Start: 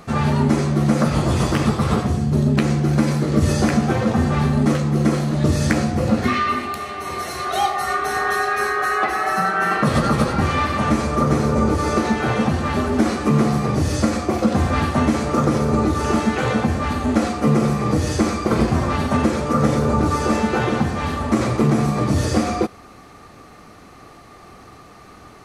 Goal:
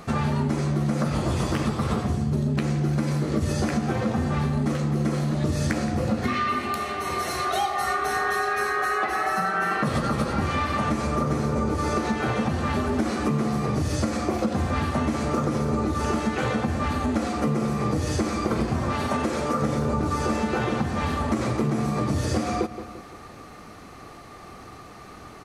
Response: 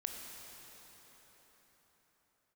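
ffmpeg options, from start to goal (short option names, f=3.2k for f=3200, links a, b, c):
-filter_complex "[0:a]asettb=1/sr,asplit=3[a][b][c];[a]atrim=end=18.924[d];[b]atrim=start=18.92:end=19.62,asetpts=PTS-STARTPTS,afade=t=in:d=0.004:c=qsin,afade=t=out:st=0.696:d=0.004:c=qsin,bass=f=250:g=-7,treble=f=4k:g=1[e];[c]atrim=start=19.616[f];[d][e]acrossfade=d=0.004:c1=hsin:c2=qsin[g];[g][f]acrossfade=d=0.004:c1=qsin:c2=hsin,asplit=2[h][i];[i]adelay=171,lowpass=f=4k:p=1,volume=-16dB,asplit=2[j][k];[k]adelay=171,lowpass=f=4k:p=1,volume=0.46,asplit=2[l][m];[m]adelay=171,lowpass=f=4k:p=1,volume=0.46,asplit=2[n][o];[o]adelay=171,lowpass=f=4k:p=1,volume=0.46[p];[h][j][l][n][p]amix=inputs=5:normalize=0,acompressor=threshold=-22dB:ratio=4"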